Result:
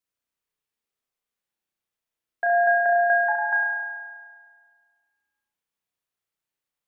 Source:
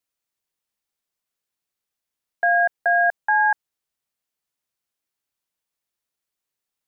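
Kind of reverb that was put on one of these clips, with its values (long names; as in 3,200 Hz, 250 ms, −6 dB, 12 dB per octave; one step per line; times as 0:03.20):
spring reverb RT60 1.7 s, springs 33 ms, chirp 75 ms, DRR −2.5 dB
level −5 dB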